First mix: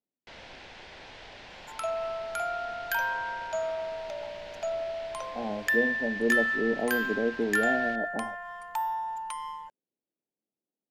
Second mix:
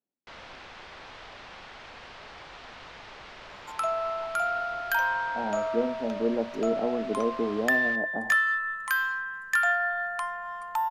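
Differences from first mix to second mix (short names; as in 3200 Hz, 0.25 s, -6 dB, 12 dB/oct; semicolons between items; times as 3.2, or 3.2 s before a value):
second sound: entry +2.00 s; master: add bell 1200 Hz +10.5 dB 0.48 oct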